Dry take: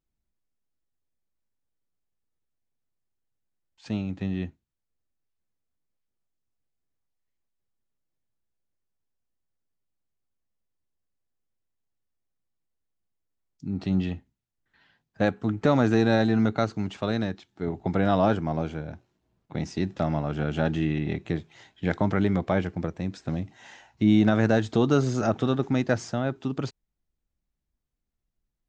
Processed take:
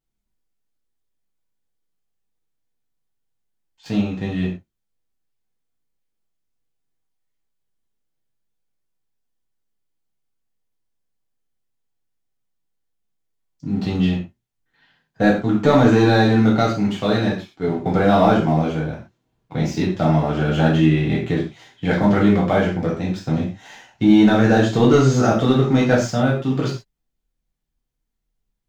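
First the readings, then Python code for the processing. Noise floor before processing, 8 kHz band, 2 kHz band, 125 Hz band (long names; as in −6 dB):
−82 dBFS, can't be measured, +8.5 dB, +8.0 dB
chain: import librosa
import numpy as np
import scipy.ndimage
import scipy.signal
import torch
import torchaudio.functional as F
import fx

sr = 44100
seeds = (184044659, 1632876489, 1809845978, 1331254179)

y = fx.leveller(x, sr, passes=1)
y = fx.rev_gated(y, sr, seeds[0], gate_ms=150, shape='falling', drr_db=-4.5)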